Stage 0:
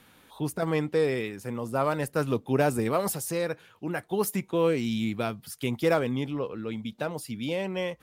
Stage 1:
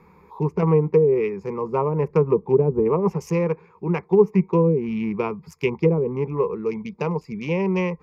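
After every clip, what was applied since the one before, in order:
adaptive Wiener filter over 15 samples
treble cut that deepens with the level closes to 400 Hz, closed at −20.5 dBFS
EQ curve with evenly spaced ripples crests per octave 0.79, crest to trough 17 dB
level +5.5 dB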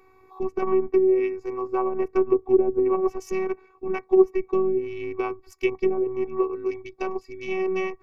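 phases set to zero 377 Hz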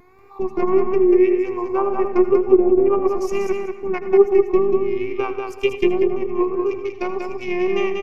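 tape wow and flutter 100 cents
repeating echo 189 ms, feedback 20%, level −4.5 dB
on a send at −11 dB: convolution reverb RT60 0.30 s, pre-delay 73 ms
on the sum: level +4 dB

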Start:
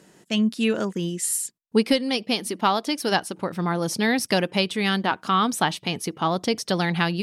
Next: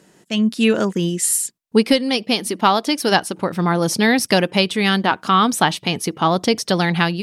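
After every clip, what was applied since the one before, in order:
automatic gain control gain up to 6.5 dB
level +1 dB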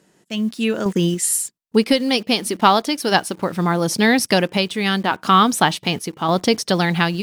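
in parallel at −7 dB: bit reduction 6 bits
on the sum: sample-and-hold tremolo
level −1 dB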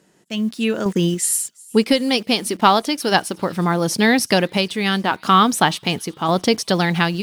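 delay with a high-pass on its return 362 ms, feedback 58%, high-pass 3,700 Hz, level −23 dB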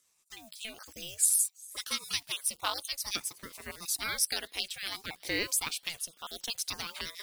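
time-frequency cells dropped at random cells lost 26%
first difference
ring modulator whose carrier an LFO sweeps 470 Hz, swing 75%, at 0.56 Hz
level −1 dB

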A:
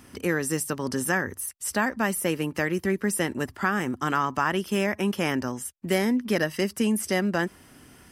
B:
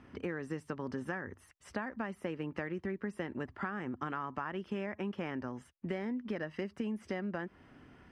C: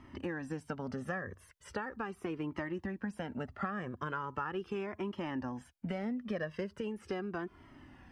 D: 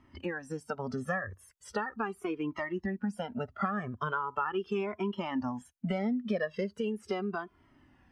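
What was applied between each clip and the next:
low-pass filter 2,300 Hz 12 dB per octave; downward compressor, threshold −29 dBFS, peak gain reduction 10 dB; level −5 dB
dynamic equaliser 2,100 Hz, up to −6 dB, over −59 dBFS, Q 3.4; flanger whose copies keep moving one way falling 0.39 Hz; level +6 dB
noise reduction from a noise print of the clip's start 13 dB; level +6 dB

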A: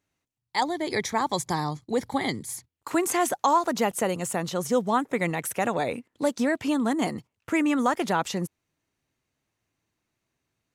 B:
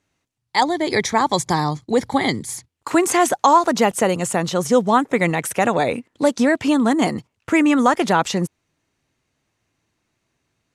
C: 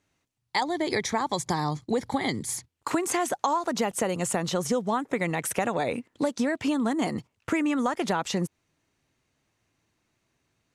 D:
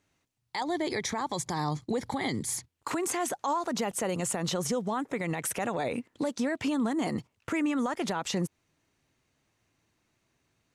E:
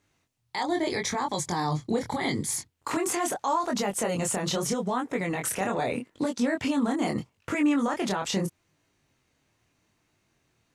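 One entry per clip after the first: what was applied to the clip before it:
low-pass filter 10,000 Hz 12 dB per octave; level +8 dB
downward compressor 6 to 1, threshold −21 dBFS, peak gain reduction 12 dB; level −2 dB
brickwall limiter −21.5 dBFS, peak gain reduction 11 dB
chorus effect 0.79 Hz, delay 20 ms, depth 6.3 ms; level +6 dB

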